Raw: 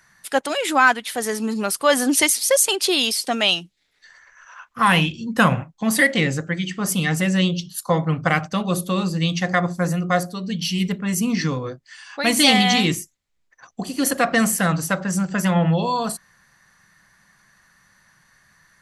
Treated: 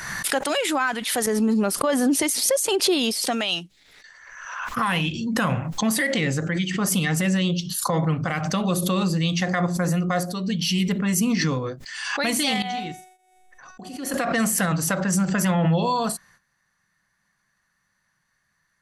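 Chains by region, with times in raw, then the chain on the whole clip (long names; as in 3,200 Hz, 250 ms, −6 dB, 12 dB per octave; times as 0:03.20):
0:01.26–0:03.23: downward expander −27 dBFS + tilt shelving filter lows +5.5 dB
0:12.62–0:14.14: high-shelf EQ 4,700 Hz −7.5 dB + tuned comb filter 370 Hz, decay 0.82 s, mix 80% + amplitude modulation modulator 24 Hz, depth 10%
whole clip: noise gate −53 dBFS, range −14 dB; brickwall limiter −14 dBFS; background raised ahead of every attack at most 44 dB per second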